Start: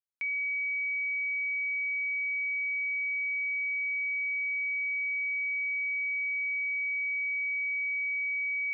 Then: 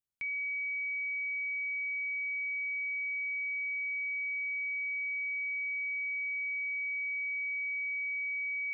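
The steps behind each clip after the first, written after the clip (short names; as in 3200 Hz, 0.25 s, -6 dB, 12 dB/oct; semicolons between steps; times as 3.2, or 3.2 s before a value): tone controls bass +12 dB, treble +4 dB; gain -4 dB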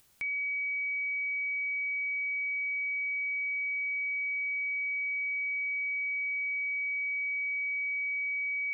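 upward compressor, threshold -47 dBFS; gain +2.5 dB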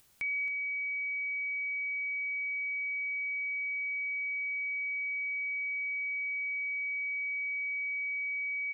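echo 0.269 s -12 dB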